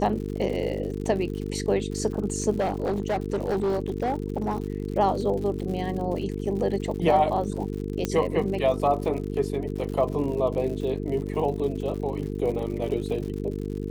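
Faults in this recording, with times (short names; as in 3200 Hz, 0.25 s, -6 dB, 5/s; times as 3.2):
buzz 50 Hz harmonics 9 -31 dBFS
crackle 100/s -34 dBFS
2.6–4.56 clipped -21 dBFS
8.05 pop -12 dBFS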